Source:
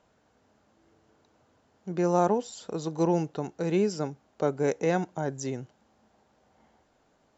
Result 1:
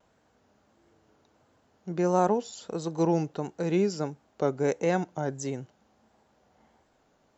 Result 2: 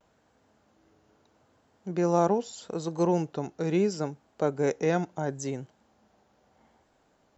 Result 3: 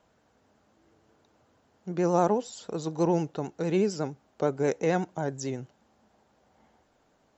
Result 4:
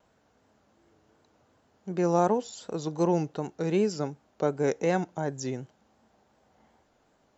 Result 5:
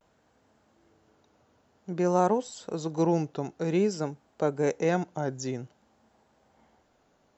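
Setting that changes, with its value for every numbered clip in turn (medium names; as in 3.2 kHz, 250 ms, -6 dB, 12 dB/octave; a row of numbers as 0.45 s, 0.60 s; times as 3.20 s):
vibrato, rate: 1.5 Hz, 0.76 Hz, 11 Hz, 2.7 Hz, 0.52 Hz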